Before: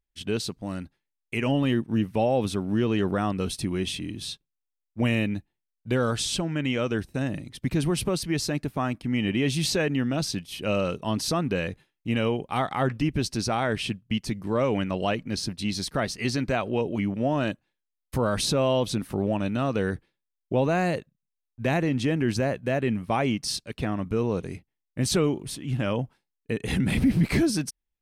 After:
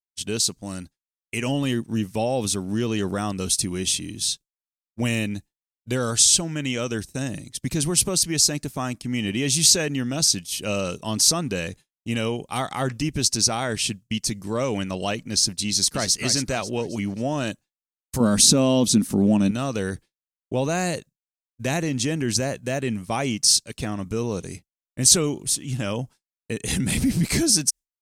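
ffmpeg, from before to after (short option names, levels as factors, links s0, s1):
-filter_complex "[0:a]asplit=2[s0][s1];[s1]afade=t=in:st=15.67:d=0.01,afade=t=out:st=16.16:d=0.01,aecho=0:1:270|540|810|1080|1350:0.398107|0.159243|0.0636971|0.0254789|0.0101915[s2];[s0][s2]amix=inputs=2:normalize=0,asettb=1/sr,asplit=3[s3][s4][s5];[s3]atrim=end=18.204[s6];[s4]atrim=start=18.2:end=19.51,asetpts=PTS-STARTPTS,afade=t=in:d=0.004:c=qsin,afade=t=out:st=1.306:d=0.004:c=qsin,equalizer=f=230:w=1.5:g=13[s7];[s5]atrim=start=19.506[s8];[s6][s7]acrossfade=d=0.004:c1=hsin:c2=qsin[s9];[s9][s8]acrossfade=d=0.004:c1=qsin:c2=hsin,equalizer=f=6900:t=o:w=1.1:g=8.5,agate=range=0.0224:threshold=0.0141:ratio=3:detection=peak,bass=f=250:g=1,treble=f=4000:g=11,volume=0.891"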